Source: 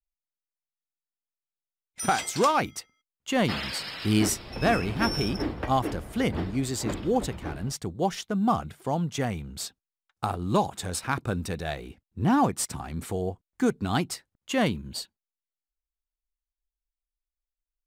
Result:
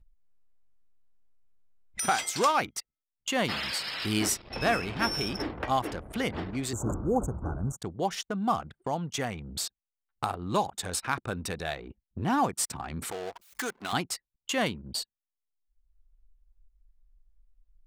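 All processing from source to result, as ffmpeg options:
-filter_complex "[0:a]asettb=1/sr,asplit=3[a][b][c];[a]atrim=end=6.734[d];[b]atrim=start=6.73:end=7.78,asetpts=PTS-STARTPTS,afade=t=in:d=0.004:c=qsin,afade=t=out:st=1.046:d=0.004:c=qsin,equalizer=f=61:w=0.35:g=12,acrossover=split=5800[e][f];[f]acompressor=threshold=-41dB:ratio=4:attack=1:release=60[g];[e][g]amix=inputs=2:normalize=0,asuperstop=centerf=3100:order=20:qfactor=0.65[h];[c]atrim=start=7.776[i];[d][h]acrossfade=d=0.004:c1=hsin:c2=qsin[j];[j][i]acrossfade=d=0.004:c1=qsin:c2=hsin,asettb=1/sr,asplit=3[k][l][m];[k]atrim=end=13.114[n];[l]atrim=start=13.11:end=13.93,asetpts=PTS-STARTPTS,afade=t=in:d=0.004:c=qsin,afade=t=out:st=0.816:d=0.004:c=qsin,aeval=exprs='val(0)+0.5*0.0211*sgn(val(0))':c=same,highpass=f=1.1k:p=1[o];[m]atrim=start=13.926[p];[n][o]acrossfade=d=0.004:c1=hsin:c2=qsin[q];[q][p]acrossfade=d=0.004:c1=qsin:c2=hsin,anlmdn=0.251,lowshelf=f=440:g=-8.5,acompressor=mode=upward:threshold=-28dB:ratio=2.5"

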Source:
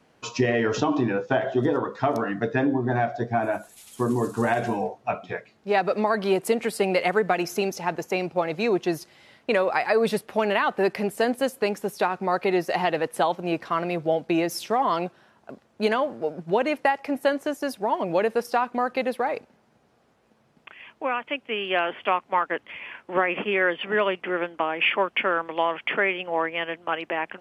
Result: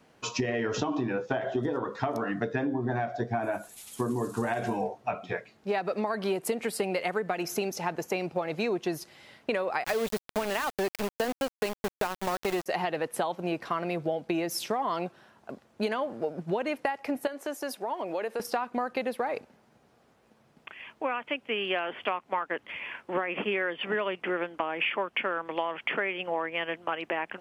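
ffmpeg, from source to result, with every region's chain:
-filter_complex "[0:a]asettb=1/sr,asplit=3[a][b][c];[a]atrim=end=9.844[d];[b]atrim=start=9.84:end=12.66,asetpts=PTS-STARTPTS,afade=t=in:d=0.004:c=qsin,afade=t=out:st=2.816:d=0.004:c=qsin,lowpass=f=12k:w=0.5412,lowpass=f=12k:w=1.3066,aeval=exprs='val(0)*gte(abs(val(0)),0.0562)':c=same[e];[c]atrim=start=12.656[f];[d][e]acrossfade=d=0.004:c1=hsin:c2=qsin[g];[g][f]acrossfade=d=0.004:c1=qsin:c2=hsin,asettb=1/sr,asplit=3[h][i][j];[h]atrim=end=17.274[k];[i]atrim=start=17.27:end=18.4,asetpts=PTS-STARTPTS,afade=t=in:d=0.004:c=qsin,afade=t=out:st=1.126:d=0.004:c=qsin,highpass=320,acompressor=threshold=-33dB:ratio=2:attack=3.2:release=140:knee=1:detection=peak[l];[j]atrim=start=18.396[m];[k][l]acrossfade=d=0.004:c1=hsin:c2=qsin[n];[n][m]acrossfade=d=0.004:c1=qsin:c2=hsin,highshelf=f=11k:g=4.5,acompressor=threshold=-26dB:ratio=6"

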